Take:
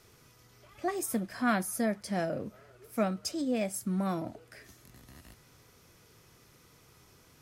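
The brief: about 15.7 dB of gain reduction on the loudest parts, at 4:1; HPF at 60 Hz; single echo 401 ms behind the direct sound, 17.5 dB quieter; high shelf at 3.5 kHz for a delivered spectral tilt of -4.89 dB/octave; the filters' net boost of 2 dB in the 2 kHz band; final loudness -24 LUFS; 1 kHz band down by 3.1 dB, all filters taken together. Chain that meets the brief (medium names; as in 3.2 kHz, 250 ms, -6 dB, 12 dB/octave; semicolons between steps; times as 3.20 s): high-pass 60 Hz; peaking EQ 1 kHz -6.5 dB; peaking EQ 2 kHz +7.5 dB; treble shelf 3.5 kHz -8 dB; compression 4:1, threshold -45 dBFS; delay 401 ms -17.5 dB; trim +24 dB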